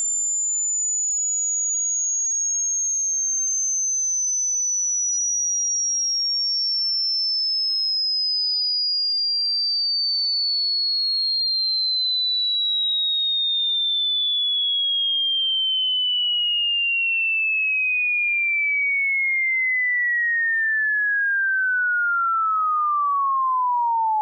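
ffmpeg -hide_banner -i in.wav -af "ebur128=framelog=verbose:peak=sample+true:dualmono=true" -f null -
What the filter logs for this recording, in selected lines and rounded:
Integrated loudness:
  I:         -16.0 LUFS
  Threshold: -26.0 LUFS
Loudness range:
  LRA:         1.2 LU
  Threshold: -35.9 LUFS
  LRA low:   -16.6 LUFS
  LRA high:  -15.4 LUFS
Sample peak:
  Peak:      -17.7 dBFS
True peak:
  Peak:      -16.7 dBFS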